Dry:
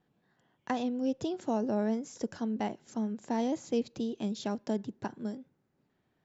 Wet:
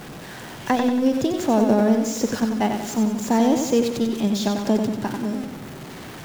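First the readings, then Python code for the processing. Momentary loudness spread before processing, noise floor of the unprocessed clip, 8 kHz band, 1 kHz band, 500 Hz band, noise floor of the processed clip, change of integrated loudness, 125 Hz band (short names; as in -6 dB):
8 LU, -77 dBFS, n/a, +12.5 dB, +12.0 dB, -38 dBFS, +12.5 dB, +13.5 dB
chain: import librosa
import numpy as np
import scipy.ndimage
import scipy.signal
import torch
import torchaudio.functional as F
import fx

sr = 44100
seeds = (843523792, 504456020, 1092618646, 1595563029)

p1 = x + 0.5 * 10.0 ** (-40.0 / 20.0) * np.sign(x)
p2 = fx.level_steps(p1, sr, step_db=15)
p3 = p1 + F.gain(torch.from_numpy(p2), -2.0).numpy()
p4 = fx.echo_feedback(p3, sr, ms=93, feedback_pct=48, wet_db=-6)
y = F.gain(torch.from_numpy(p4), 6.5).numpy()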